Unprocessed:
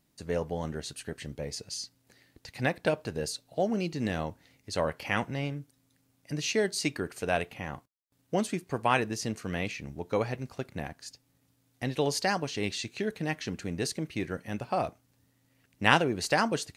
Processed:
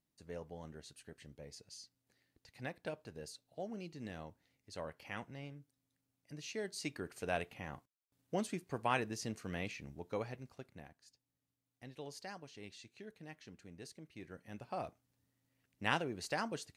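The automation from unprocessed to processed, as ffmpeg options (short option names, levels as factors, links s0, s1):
-af "volume=0.944,afade=t=in:st=6.51:d=0.75:silence=0.446684,afade=t=out:st=9.74:d=1.24:silence=0.266073,afade=t=in:st=14.09:d=0.7:silence=0.398107"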